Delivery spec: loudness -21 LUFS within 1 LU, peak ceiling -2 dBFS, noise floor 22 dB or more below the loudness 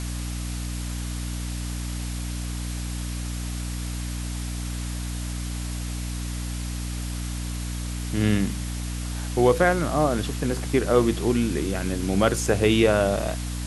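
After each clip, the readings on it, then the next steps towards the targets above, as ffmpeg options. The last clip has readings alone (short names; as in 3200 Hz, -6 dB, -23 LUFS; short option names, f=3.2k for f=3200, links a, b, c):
hum 60 Hz; harmonics up to 300 Hz; hum level -28 dBFS; noise floor -30 dBFS; noise floor target -48 dBFS; loudness -26.0 LUFS; peak -5.5 dBFS; loudness target -21.0 LUFS
-> -af "bandreject=f=60:t=h:w=4,bandreject=f=120:t=h:w=4,bandreject=f=180:t=h:w=4,bandreject=f=240:t=h:w=4,bandreject=f=300:t=h:w=4"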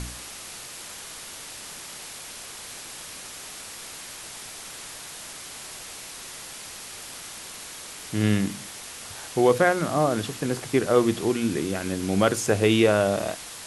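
hum none; noise floor -40 dBFS; noise floor target -50 dBFS
-> -af "afftdn=nr=10:nf=-40"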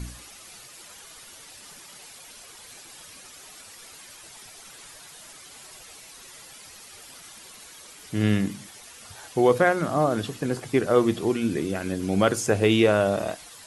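noise floor -47 dBFS; loudness -23.5 LUFS; peak -6.0 dBFS; loudness target -21.0 LUFS
-> -af "volume=2.5dB"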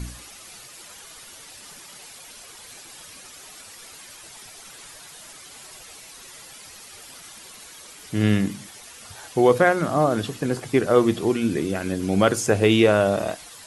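loudness -21.0 LUFS; peak -3.5 dBFS; noise floor -44 dBFS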